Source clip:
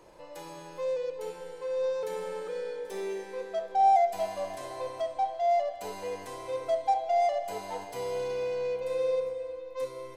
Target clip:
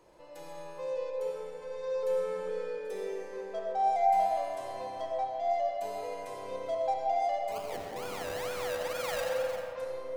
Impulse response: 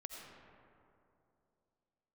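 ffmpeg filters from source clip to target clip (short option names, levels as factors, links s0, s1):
-filter_complex "[0:a]asplit=3[s0][s1][s2];[s0]afade=t=out:st=7.51:d=0.02[s3];[s1]acrusher=samples=32:mix=1:aa=0.000001:lfo=1:lforange=19.2:lforate=2.2,afade=t=in:st=7.51:d=0.02,afade=t=out:st=9.61:d=0.02[s4];[s2]afade=t=in:st=9.61:d=0.02[s5];[s3][s4][s5]amix=inputs=3:normalize=0[s6];[1:a]atrim=start_sample=2205[s7];[s6][s7]afir=irnorm=-1:irlink=0"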